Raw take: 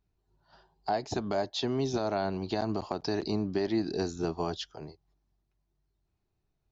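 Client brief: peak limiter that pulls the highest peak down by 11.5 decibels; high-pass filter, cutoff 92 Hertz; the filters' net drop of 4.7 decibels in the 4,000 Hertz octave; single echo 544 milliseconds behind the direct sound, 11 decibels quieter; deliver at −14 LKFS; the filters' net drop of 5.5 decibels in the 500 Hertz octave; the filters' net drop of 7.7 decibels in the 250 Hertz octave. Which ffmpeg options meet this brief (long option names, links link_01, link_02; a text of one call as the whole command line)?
ffmpeg -i in.wav -af "highpass=92,equalizer=frequency=250:width_type=o:gain=-9,equalizer=frequency=500:width_type=o:gain=-4.5,equalizer=frequency=4000:width_type=o:gain=-5.5,alimiter=level_in=7dB:limit=-24dB:level=0:latency=1,volume=-7dB,aecho=1:1:544:0.282,volume=27.5dB" out.wav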